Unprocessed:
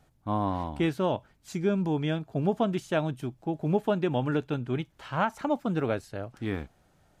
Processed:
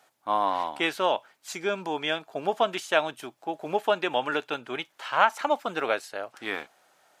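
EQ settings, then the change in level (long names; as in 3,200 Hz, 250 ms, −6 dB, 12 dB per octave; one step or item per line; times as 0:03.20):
high-pass filter 670 Hz 12 dB per octave
dynamic equaliser 2,900 Hz, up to +3 dB, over −46 dBFS, Q 0.94
+7.5 dB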